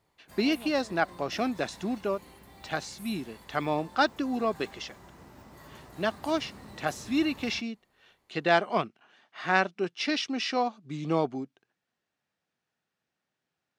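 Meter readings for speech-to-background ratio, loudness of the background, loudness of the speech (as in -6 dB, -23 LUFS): 19.5 dB, -49.5 LUFS, -30.0 LUFS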